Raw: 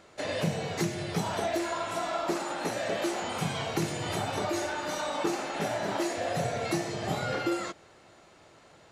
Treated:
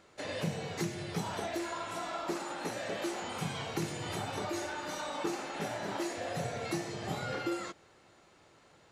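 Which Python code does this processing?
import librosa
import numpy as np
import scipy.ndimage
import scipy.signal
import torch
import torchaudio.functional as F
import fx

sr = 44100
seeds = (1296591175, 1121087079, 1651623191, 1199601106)

y = fx.peak_eq(x, sr, hz=650.0, db=-4.5, octaves=0.25)
y = y * 10.0 ** (-5.0 / 20.0)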